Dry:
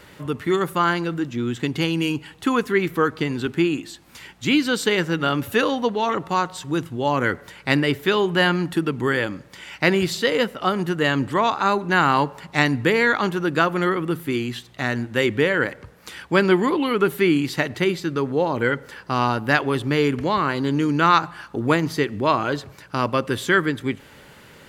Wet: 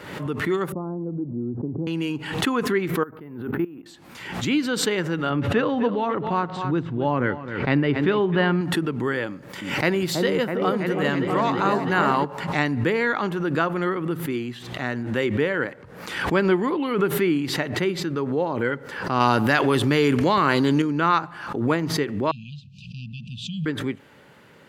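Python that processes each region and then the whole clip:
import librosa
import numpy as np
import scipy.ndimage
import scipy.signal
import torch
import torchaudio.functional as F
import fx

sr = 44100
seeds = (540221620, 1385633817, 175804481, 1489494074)

y = fx.chain(x, sr, fx.gaussian_blur(sigma=13.0),
    fx.band_squash(depth_pct=40), at=(0.72, 1.87))
y = fx.chain(y, sr, fx.lowpass(hz=1500.0, slope=12),
    fx.level_steps(step_db=18),
    fx.resample_bad(factor=3, down='filtered', up='hold'), at=(3.03, 3.86))
y = fx.chain(y, sr, fx.lowpass(hz=3400.0, slope=12),
    fx.low_shelf(hz=250.0, db=6.5),
    fx.echo_single(ms=259, db=-13.0), at=(5.3, 8.61))
y = fx.chain(y, sr, fx.high_shelf(hz=11000.0, db=12.0),
    fx.echo_opening(ms=326, hz=750, octaves=1, feedback_pct=70, wet_db=-3), at=(9.29, 12.25))
y = fx.chain(y, sr, fx.high_shelf(hz=3200.0, db=10.5),
    fx.env_flatten(amount_pct=70), at=(19.2, 20.82))
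y = fx.chain(y, sr, fx.brickwall_bandstop(low_hz=230.0, high_hz=2400.0),
    fx.air_absorb(metres=140.0), at=(22.31, 23.66))
y = scipy.signal.sosfilt(scipy.signal.butter(2, 110.0, 'highpass', fs=sr, output='sos'), y)
y = fx.high_shelf(y, sr, hz=3100.0, db=-9.0)
y = fx.pre_swell(y, sr, db_per_s=59.0)
y = y * 10.0 ** (-3.0 / 20.0)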